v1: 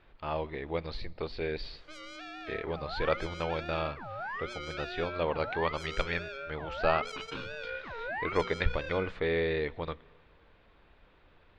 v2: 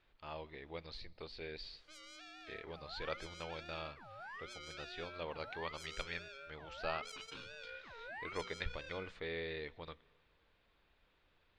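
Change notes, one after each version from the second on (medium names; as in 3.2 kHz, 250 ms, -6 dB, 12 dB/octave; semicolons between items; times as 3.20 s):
master: add pre-emphasis filter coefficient 0.8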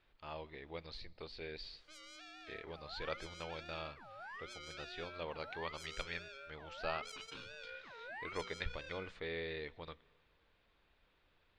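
background: add high-pass 150 Hz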